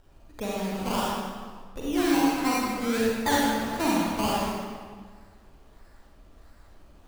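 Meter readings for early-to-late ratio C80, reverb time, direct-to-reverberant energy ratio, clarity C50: -0.5 dB, 1.6 s, -5.5 dB, -3.5 dB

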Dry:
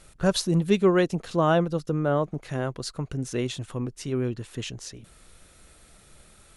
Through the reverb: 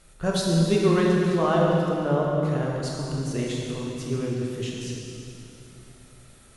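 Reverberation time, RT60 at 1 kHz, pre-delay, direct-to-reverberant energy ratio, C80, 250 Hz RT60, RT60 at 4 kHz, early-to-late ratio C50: 2.9 s, 2.7 s, 15 ms, -3.5 dB, 0.0 dB, 3.4 s, 2.6 s, -1.5 dB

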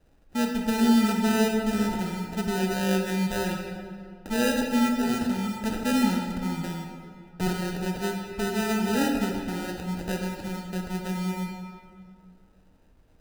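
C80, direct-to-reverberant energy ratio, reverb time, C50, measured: 4.5 dB, 1.5 dB, 2.2 s, 3.0 dB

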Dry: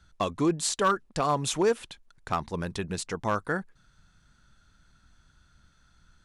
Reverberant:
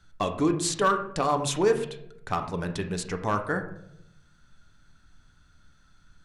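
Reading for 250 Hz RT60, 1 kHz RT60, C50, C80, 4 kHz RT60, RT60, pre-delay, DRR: 1.1 s, 0.65 s, 9.5 dB, 12.5 dB, 0.45 s, 0.75 s, 3 ms, 5.0 dB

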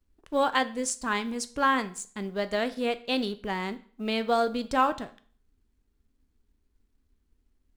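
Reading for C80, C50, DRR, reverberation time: 21.0 dB, 17.0 dB, 12.0 dB, 0.45 s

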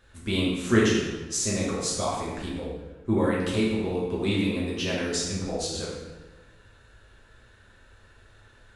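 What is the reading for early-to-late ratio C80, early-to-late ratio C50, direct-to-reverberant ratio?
3.0 dB, 0.5 dB, -6.5 dB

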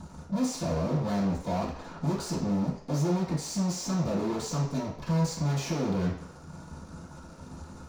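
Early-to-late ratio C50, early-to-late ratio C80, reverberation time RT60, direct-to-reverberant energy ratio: 5.5 dB, 9.0 dB, 0.55 s, -13.0 dB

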